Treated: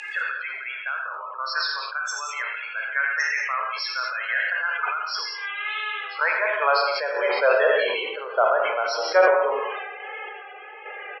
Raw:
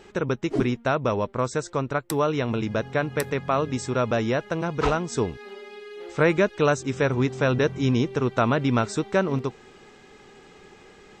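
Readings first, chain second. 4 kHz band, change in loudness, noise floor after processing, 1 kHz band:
+7.0 dB, +1.0 dB, -38 dBFS, +3.5 dB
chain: knee-point frequency compression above 2.4 kHz 1.5:1; upward compressor, threshold -23 dBFS; vibrato 1.6 Hz 62 cents; tilt EQ +1.5 dB/octave; loudest bins only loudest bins 32; Chebyshev band-pass 480–8300 Hz, order 3; gated-style reverb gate 240 ms flat, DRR 2 dB; random-step tremolo; high-pass sweep 1.7 kHz -> 600 Hz, 5.15–7.24 s; treble shelf 2.3 kHz +9.5 dB; on a send: delay 84 ms -12.5 dB; on the sum: decay stretcher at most 32 dB/s

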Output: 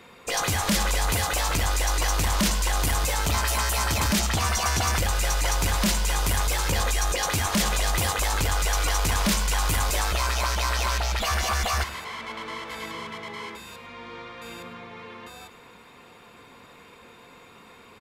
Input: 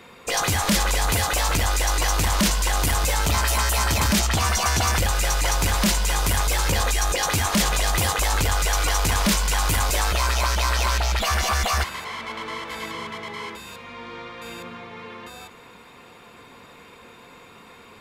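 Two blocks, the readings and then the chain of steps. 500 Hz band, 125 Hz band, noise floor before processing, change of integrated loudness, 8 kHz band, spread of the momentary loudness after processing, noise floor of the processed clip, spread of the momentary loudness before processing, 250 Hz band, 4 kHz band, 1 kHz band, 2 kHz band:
-3.0 dB, -3.0 dB, -47 dBFS, -3.0 dB, -3.0 dB, 16 LU, -50 dBFS, 16 LU, -3.0 dB, -3.0 dB, -3.0 dB, -3.0 dB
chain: on a send: delay 104 ms -16 dB; on the sum: trim -3 dB

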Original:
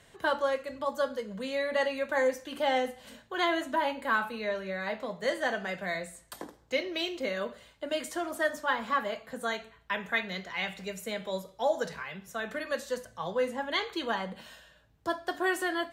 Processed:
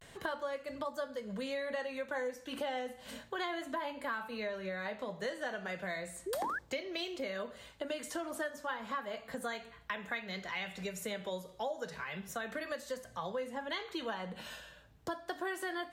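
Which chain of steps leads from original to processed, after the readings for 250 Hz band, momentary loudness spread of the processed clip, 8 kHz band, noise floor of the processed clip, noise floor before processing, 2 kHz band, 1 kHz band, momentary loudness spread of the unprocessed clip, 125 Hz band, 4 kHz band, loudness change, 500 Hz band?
-6.0 dB, 5 LU, -3.0 dB, -58 dBFS, -60 dBFS, -7.5 dB, -8.0 dB, 9 LU, -3.0 dB, -7.0 dB, -7.5 dB, -7.5 dB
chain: compression 4:1, threshold -41 dBFS, peak gain reduction 16 dB; vibrato 0.33 Hz 49 cents; painted sound rise, 6.26–6.59 s, 350–1800 Hz -40 dBFS; trim +3.5 dB

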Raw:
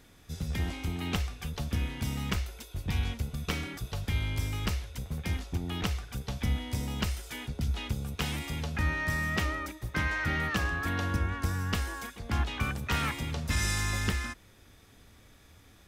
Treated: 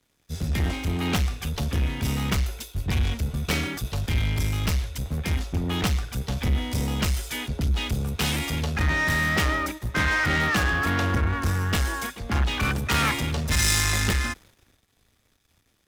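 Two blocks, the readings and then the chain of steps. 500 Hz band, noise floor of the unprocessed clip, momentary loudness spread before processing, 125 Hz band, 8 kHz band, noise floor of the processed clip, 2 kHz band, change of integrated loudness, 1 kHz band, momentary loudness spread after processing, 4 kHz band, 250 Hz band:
+8.0 dB, -57 dBFS, 8 LU, +6.5 dB, +10.0 dB, -67 dBFS, +8.0 dB, +7.5 dB, +7.5 dB, 7 LU, +8.5 dB, +7.0 dB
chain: waveshaping leveller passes 3; three bands expanded up and down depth 70%

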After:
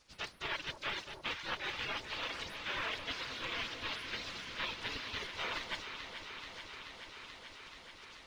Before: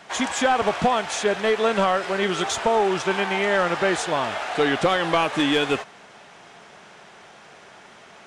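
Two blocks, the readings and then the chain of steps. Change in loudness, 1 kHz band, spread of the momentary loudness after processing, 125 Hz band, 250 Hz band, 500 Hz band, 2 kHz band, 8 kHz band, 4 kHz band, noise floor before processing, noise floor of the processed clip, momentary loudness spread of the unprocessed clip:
-18.0 dB, -21.0 dB, 11 LU, -19.0 dB, -26.0 dB, -27.0 dB, -13.5 dB, -21.0 dB, -10.5 dB, -48 dBFS, -55 dBFS, 4 LU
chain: spectral gate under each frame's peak -25 dB weak; reverb removal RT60 1.6 s; treble shelf 3.9 kHz +11 dB; band-stop 750 Hz, Q 12; reverse; compression, threshold -48 dBFS, peak gain reduction 19 dB; reverse; modulation noise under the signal 10 dB; distance through air 290 m; on a send: echo whose repeats swap between lows and highs 216 ms, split 930 Hz, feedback 90%, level -7.5 dB; on the sum: trim +14.5 dB

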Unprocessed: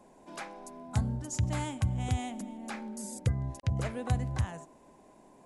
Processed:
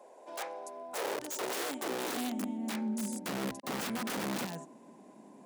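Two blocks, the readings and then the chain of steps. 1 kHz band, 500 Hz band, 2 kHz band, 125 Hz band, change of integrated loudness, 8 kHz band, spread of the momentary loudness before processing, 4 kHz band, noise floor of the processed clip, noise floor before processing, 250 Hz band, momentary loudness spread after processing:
+2.0 dB, +4.5 dB, +4.0 dB, -18.0 dB, -2.0 dB, +2.0 dB, 12 LU, +6.0 dB, -56 dBFS, -59 dBFS, +2.0 dB, 11 LU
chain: integer overflow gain 32 dB; high-pass sweep 520 Hz -> 210 Hz, 0.85–2.87 s

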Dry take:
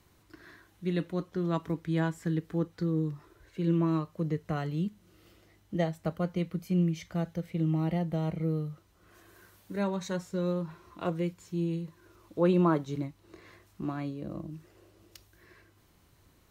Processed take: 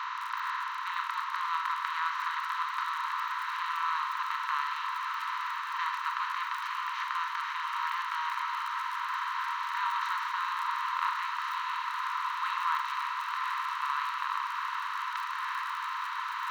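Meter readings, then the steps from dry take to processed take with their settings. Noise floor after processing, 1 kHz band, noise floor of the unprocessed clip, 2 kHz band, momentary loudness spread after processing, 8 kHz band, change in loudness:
-36 dBFS, +13.5 dB, -64 dBFS, +14.0 dB, 3 LU, no reading, -0.5 dB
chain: spectral levelling over time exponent 0.2; low-pass 4.7 kHz 24 dB/octave; treble shelf 3 kHz -6.5 dB; crackle 44 per s -34 dBFS; brick-wall FIR high-pass 890 Hz; echo with a slow build-up 122 ms, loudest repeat 8, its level -15.5 dB

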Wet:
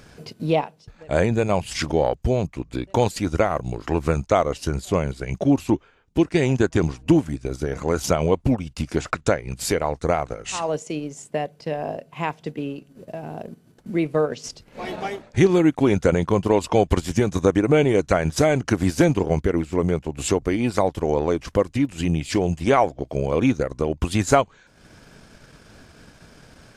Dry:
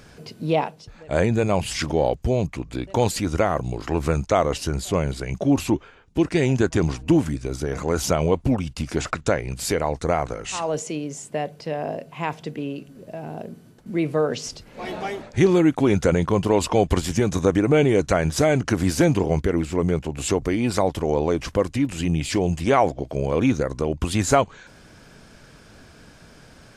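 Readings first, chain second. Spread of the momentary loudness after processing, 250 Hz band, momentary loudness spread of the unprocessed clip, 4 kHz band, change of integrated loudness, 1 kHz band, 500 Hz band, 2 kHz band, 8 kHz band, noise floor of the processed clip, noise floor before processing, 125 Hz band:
12 LU, +0.5 dB, 11 LU, -1.5 dB, +0.5 dB, +0.5 dB, +0.5 dB, +0.5 dB, -2.0 dB, -55 dBFS, -49 dBFS, 0.0 dB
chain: transient shaper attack +2 dB, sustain -8 dB

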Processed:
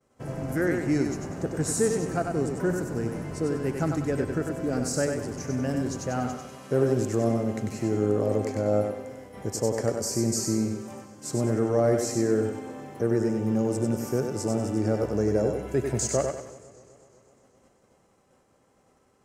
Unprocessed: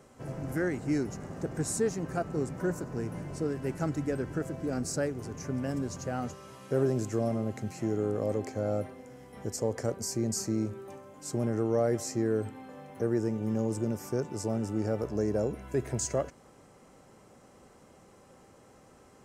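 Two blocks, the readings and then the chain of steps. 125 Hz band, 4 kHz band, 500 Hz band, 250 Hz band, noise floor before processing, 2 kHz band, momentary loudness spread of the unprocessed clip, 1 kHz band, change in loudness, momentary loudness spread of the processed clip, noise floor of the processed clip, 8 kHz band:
+4.5 dB, +5.5 dB, +5.5 dB, +5.0 dB, -57 dBFS, +5.5 dB, 9 LU, +5.5 dB, +5.0 dB, 8 LU, -64 dBFS, +5.5 dB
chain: thinning echo 96 ms, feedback 38%, high-pass 200 Hz, level -4.5 dB; expander -46 dBFS; modulated delay 126 ms, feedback 76%, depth 111 cents, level -21.5 dB; trim +4 dB

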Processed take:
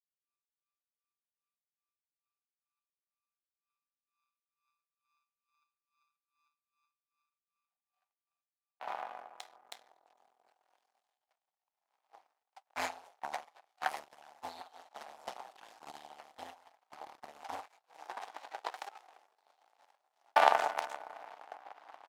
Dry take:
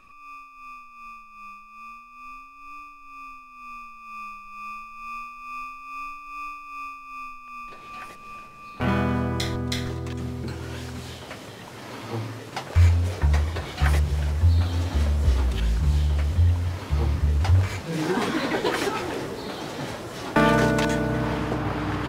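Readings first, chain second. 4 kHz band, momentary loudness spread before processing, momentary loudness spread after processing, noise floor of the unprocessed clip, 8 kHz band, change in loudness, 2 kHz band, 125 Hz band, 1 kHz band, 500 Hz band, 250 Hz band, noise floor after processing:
-14.0 dB, 21 LU, 21 LU, -46 dBFS, -15.5 dB, -11.5 dB, -12.0 dB, under -40 dB, -6.0 dB, -13.5 dB, -33.5 dB, under -85 dBFS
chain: power-law waveshaper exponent 3; resonant high-pass 770 Hz, resonance Q 4.9

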